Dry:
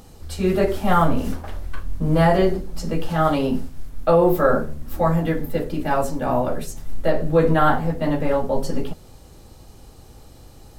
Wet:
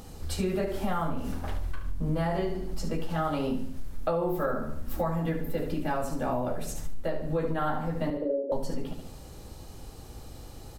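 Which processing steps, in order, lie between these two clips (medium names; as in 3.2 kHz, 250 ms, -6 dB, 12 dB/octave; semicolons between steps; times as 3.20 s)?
8.10–8.52 s: elliptic band-pass 290–590 Hz, stop band 40 dB; on a send: feedback delay 72 ms, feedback 39%, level -9.5 dB; on the sum: compression 6:1, threshold -26 dBFS, peak gain reduction 15 dB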